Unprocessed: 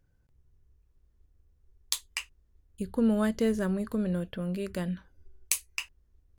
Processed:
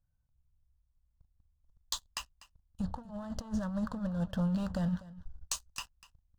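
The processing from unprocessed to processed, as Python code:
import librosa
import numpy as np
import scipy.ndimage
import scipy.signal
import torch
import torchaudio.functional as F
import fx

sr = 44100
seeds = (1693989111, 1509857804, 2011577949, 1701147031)

y = scipy.signal.sosfilt(scipy.signal.bessel(8, 4800.0, 'lowpass', norm='mag', fs=sr, output='sos'), x)
y = fx.low_shelf(y, sr, hz=250.0, db=2.0)
y = fx.over_compress(y, sr, threshold_db=-31.0, ratio=-0.5)
y = fx.leveller(y, sr, passes=3)
y = fx.fixed_phaser(y, sr, hz=930.0, stages=4)
y = y + 10.0 ** (-18.5 / 20.0) * np.pad(y, (int(246 * sr / 1000.0), 0))[:len(y)]
y = F.gain(torch.from_numpy(y), -8.5).numpy()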